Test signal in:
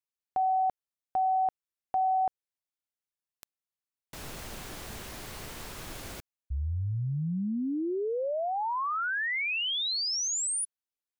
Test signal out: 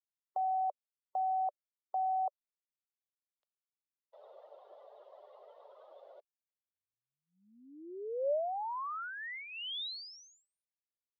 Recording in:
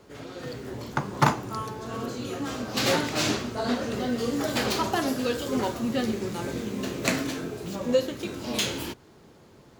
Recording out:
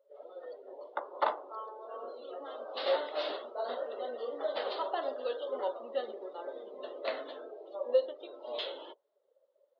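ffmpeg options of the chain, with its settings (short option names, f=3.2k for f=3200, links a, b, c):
-af "highpass=f=450:w=0.5412,highpass=f=450:w=1.3066,equalizer=f=580:t=q:w=4:g=9,equalizer=f=1.6k:t=q:w=4:g=-5,equalizer=f=2.4k:t=q:w=4:g=-10,equalizer=f=3.7k:t=q:w=4:g=3,lowpass=f=3.7k:w=0.5412,lowpass=f=3.7k:w=1.3066,afftdn=nr=22:nf=-42,volume=-7.5dB"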